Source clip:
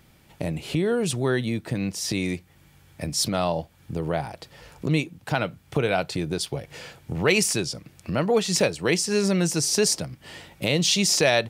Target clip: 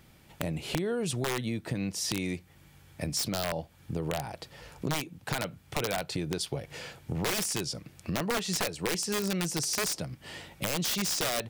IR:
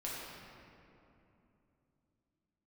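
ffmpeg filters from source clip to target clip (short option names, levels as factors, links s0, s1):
-af "aeval=exprs='(mod(5.31*val(0)+1,2)-1)/5.31':c=same,acompressor=threshold=0.0447:ratio=4,volume=0.841"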